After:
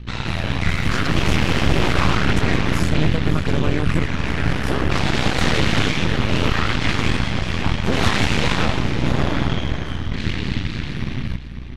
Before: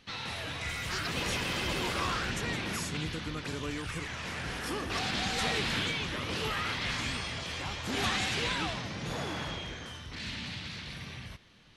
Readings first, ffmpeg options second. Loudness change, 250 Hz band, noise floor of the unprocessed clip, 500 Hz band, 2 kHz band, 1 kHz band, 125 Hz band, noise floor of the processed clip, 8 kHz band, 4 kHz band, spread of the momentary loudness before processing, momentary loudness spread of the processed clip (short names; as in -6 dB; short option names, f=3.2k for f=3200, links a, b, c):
+12.5 dB, +17.0 dB, -45 dBFS, +13.5 dB, +10.5 dB, +11.5 dB, +18.5 dB, -28 dBFS, +6.0 dB, +8.0 dB, 10 LU, 7 LU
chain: -filter_complex "[0:a]aeval=exprs='val(0)+0.00282*(sin(2*PI*60*n/s)+sin(2*PI*2*60*n/s)/2+sin(2*PI*3*60*n/s)/3+sin(2*PI*4*60*n/s)/4+sin(2*PI*5*60*n/s)/5)':c=same,acontrast=74,bass=f=250:g=11,treble=f=4k:g=-10,aeval=exprs='0.376*(cos(1*acos(clip(val(0)/0.376,-1,1)))-cos(1*PI/2))+0.133*(cos(6*acos(clip(val(0)/0.376,-1,1)))-cos(6*PI/2))':c=same,asplit=2[a][b];[b]aecho=0:1:547:0.251[c];[a][c]amix=inputs=2:normalize=0"